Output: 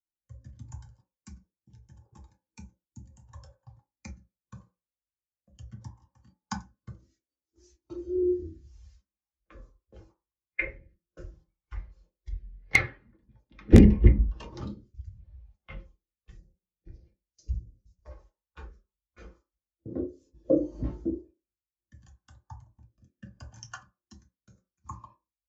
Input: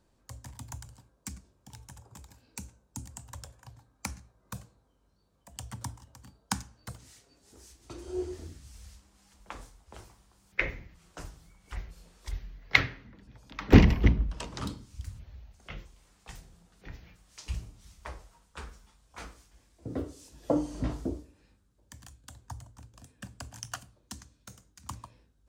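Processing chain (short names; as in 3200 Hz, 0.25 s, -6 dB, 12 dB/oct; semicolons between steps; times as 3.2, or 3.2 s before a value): 16.37–18.11 band shelf 1700 Hz -11 dB 2.4 oct; in parallel at +0.5 dB: compressor 5:1, threshold -41 dBFS, peak gain reduction 27.5 dB; 6.94–7.77 on the sum: comb 3.1 ms, depth 33%; 24.58–24.91 spectral repair 2600–6000 Hz; gate -47 dBFS, range -16 dB; downsampling 16000 Hz; on a send at -1 dB: steep high-pass 180 Hz 96 dB/oct + reverb RT60 0.40 s, pre-delay 3 ms; on the sum: wrapped overs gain 3 dB; rotary speaker horn 0.75 Hz; spectral expander 1.5:1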